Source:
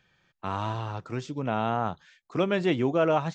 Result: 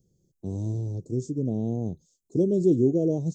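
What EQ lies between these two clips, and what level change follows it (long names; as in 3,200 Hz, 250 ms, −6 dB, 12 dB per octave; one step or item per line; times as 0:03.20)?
Chebyshev band-stop filter 410–6,600 Hz, order 3
+5.5 dB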